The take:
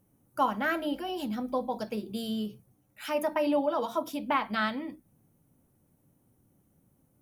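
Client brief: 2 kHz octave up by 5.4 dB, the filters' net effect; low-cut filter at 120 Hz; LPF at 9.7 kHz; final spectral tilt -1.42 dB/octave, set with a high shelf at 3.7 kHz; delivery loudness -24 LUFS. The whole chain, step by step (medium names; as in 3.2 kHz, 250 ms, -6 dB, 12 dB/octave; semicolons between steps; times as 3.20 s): high-pass 120 Hz; low-pass 9.7 kHz; peaking EQ 2 kHz +5 dB; treble shelf 3.7 kHz +8.5 dB; trim +5.5 dB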